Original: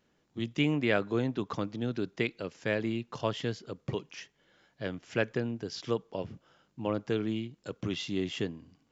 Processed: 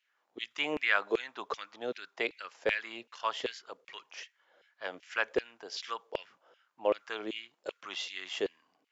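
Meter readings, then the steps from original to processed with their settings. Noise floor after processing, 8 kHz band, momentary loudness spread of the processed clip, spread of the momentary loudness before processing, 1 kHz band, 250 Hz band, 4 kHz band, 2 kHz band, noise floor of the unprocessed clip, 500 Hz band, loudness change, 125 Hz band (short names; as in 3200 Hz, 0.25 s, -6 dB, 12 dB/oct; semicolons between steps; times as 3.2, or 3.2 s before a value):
-78 dBFS, n/a, 15 LU, 11 LU, +3.0 dB, -12.0 dB, +1.5 dB, +3.5 dB, -73 dBFS, -2.5 dB, -2.0 dB, -25.5 dB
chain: LFO high-pass saw down 2.6 Hz 440–2700 Hz; mismatched tape noise reduction decoder only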